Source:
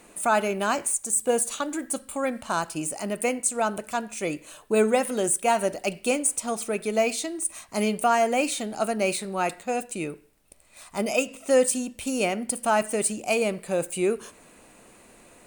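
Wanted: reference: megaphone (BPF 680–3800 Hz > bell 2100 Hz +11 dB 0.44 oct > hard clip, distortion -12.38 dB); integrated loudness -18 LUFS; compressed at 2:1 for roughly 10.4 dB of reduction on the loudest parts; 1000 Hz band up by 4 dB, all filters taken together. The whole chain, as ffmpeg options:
-af "equalizer=f=1k:t=o:g=7,acompressor=threshold=-33dB:ratio=2,highpass=680,lowpass=3.8k,equalizer=f=2.1k:t=o:w=0.44:g=11,asoftclip=type=hard:threshold=-26.5dB,volume=17.5dB"

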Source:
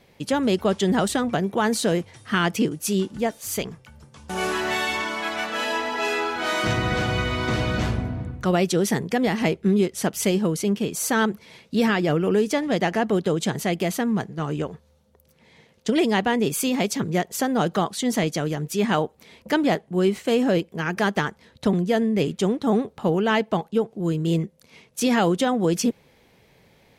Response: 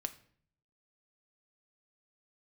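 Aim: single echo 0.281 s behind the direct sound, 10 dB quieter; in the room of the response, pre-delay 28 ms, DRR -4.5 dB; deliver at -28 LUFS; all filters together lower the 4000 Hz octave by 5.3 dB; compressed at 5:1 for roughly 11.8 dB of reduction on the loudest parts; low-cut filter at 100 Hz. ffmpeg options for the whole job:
-filter_complex "[0:a]highpass=100,equalizer=f=4k:t=o:g=-7.5,acompressor=threshold=-30dB:ratio=5,aecho=1:1:281:0.316,asplit=2[a][b];[1:a]atrim=start_sample=2205,adelay=28[c];[b][c]afir=irnorm=-1:irlink=0,volume=5.5dB[d];[a][d]amix=inputs=2:normalize=0,volume=-0.5dB"

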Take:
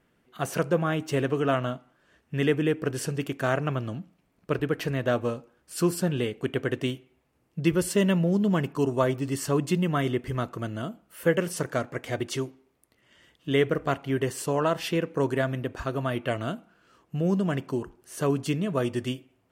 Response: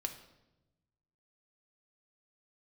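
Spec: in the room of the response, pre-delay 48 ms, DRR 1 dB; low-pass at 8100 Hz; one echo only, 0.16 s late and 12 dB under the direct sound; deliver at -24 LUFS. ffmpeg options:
-filter_complex "[0:a]lowpass=8.1k,aecho=1:1:160:0.251,asplit=2[a][b];[1:a]atrim=start_sample=2205,adelay=48[c];[b][c]afir=irnorm=-1:irlink=0,volume=-1dB[d];[a][d]amix=inputs=2:normalize=0,volume=1dB"

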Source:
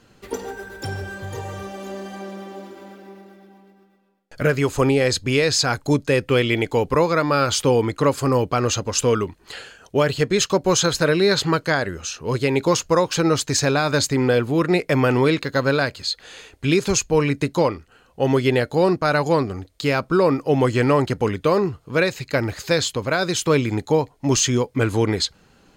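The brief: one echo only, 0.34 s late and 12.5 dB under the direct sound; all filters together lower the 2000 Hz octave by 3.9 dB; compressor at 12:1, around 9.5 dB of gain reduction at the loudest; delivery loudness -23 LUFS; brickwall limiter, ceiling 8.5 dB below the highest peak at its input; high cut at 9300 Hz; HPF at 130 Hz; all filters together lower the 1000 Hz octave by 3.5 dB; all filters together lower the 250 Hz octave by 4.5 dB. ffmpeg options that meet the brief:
-af "highpass=130,lowpass=9.3k,equalizer=f=250:t=o:g=-5.5,equalizer=f=1k:t=o:g=-3,equalizer=f=2k:t=o:g=-4,acompressor=threshold=-25dB:ratio=12,alimiter=limit=-22dB:level=0:latency=1,aecho=1:1:340:0.237,volume=10dB"

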